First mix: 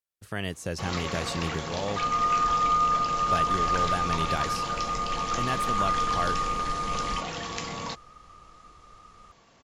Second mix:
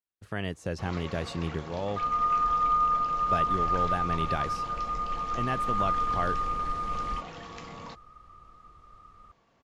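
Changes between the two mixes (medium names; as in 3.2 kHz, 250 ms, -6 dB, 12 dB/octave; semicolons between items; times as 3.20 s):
first sound -7.0 dB; master: add low-pass 2.3 kHz 6 dB/octave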